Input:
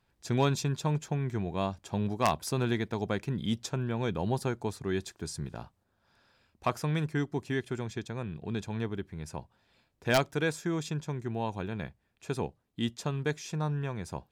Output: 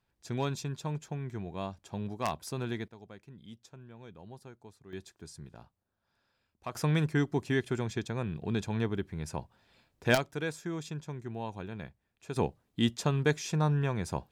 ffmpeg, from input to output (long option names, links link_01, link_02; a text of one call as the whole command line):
ffmpeg -i in.wav -af "asetnsamples=nb_out_samples=441:pad=0,asendcmd='2.88 volume volume -18.5dB;4.93 volume volume -10dB;6.75 volume volume 2.5dB;10.15 volume volume -5dB;12.36 volume volume 4dB',volume=-6dB" out.wav